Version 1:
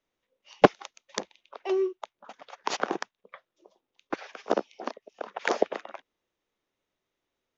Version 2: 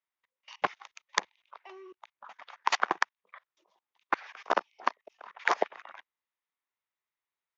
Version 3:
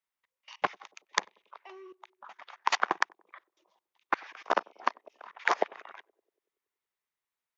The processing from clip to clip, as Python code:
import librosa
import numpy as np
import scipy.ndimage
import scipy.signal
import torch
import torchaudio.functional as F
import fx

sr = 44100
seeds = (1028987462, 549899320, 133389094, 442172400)

y1 = fx.graphic_eq(x, sr, hz=(125, 250, 500, 1000, 2000, 4000), db=(-4, -7, -5, 10, 9, 3))
y1 = fx.level_steps(y1, sr, step_db=24)
y1 = scipy.signal.sosfilt(scipy.signal.butter(2, 63.0, 'highpass', fs=sr, output='sos'), y1)
y2 = fx.echo_banded(y1, sr, ms=94, feedback_pct=66, hz=370.0, wet_db=-24.0)